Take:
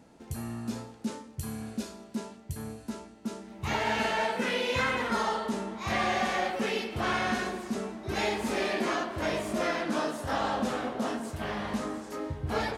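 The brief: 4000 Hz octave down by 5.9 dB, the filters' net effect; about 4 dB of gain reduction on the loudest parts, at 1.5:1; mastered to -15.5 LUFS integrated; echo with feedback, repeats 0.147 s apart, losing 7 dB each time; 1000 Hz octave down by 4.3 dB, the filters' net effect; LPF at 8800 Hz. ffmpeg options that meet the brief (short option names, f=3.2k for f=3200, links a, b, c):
-af "lowpass=8.8k,equalizer=f=1k:t=o:g=-5.5,equalizer=f=4k:t=o:g=-7.5,acompressor=threshold=-38dB:ratio=1.5,aecho=1:1:147|294|441|588|735:0.447|0.201|0.0905|0.0407|0.0183,volume=20.5dB"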